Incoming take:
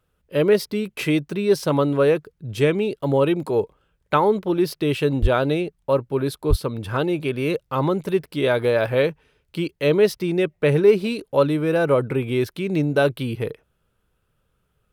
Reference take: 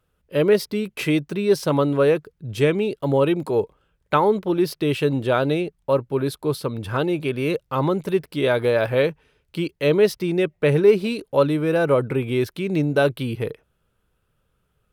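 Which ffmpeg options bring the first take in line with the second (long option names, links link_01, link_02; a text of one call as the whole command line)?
ffmpeg -i in.wav -filter_complex "[0:a]asplit=3[link_01][link_02][link_03];[link_01]afade=type=out:start_time=5.21:duration=0.02[link_04];[link_02]highpass=frequency=140:width=0.5412,highpass=frequency=140:width=1.3066,afade=type=in:start_time=5.21:duration=0.02,afade=type=out:start_time=5.33:duration=0.02[link_05];[link_03]afade=type=in:start_time=5.33:duration=0.02[link_06];[link_04][link_05][link_06]amix=inputs=3:normalize=0,asplit=3[link_07][link_08][link_09];[link_07]afade=type=out:start_time=6.49:duration=0.02[link_10];[link_08]highpass=frequency=140:width=0.5412,highpass=frequency=140:width=1.3066,afade=type=in:start_time=6.49:duration=0.02,afade=type=out:start_time=6.61:duration=0.02[link_11];[link_09]afade=type=in:start_time=6.61:duration=0.02[link_12];[link_10][link_11][link_12]amix=inputs=3:normalize=0" out.wav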